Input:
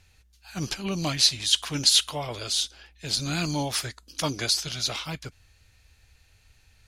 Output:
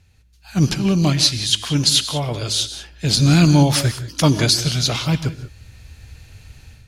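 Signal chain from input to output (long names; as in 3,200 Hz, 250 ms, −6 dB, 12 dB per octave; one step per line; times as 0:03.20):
parametric band 140 Hz +10.5 dB 2.9 octaves
automatic gain control gain up to 14 dB
reverb whose tail is shaped and stops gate 210 ms rising, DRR 12 dB
level −2 dB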